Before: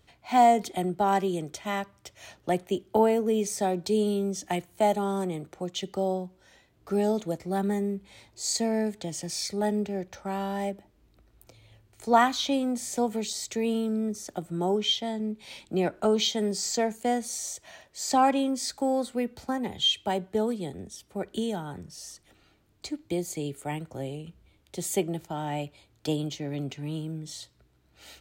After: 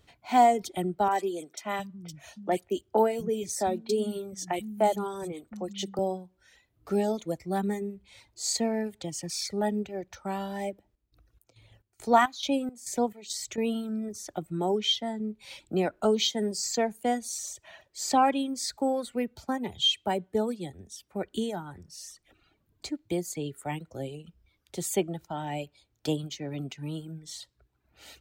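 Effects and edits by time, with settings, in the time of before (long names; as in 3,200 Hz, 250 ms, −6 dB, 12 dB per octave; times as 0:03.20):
0:01.08–0:05.99: three-band delay without the direct sound mids, highs, lows 30/710 ms, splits 190/2,700 Hz
0:10.69–0:13.58: square-wave tremolo 2.3 Hz, depth 65%, duty 60%
whole clip: reverb reduction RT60 1.1 s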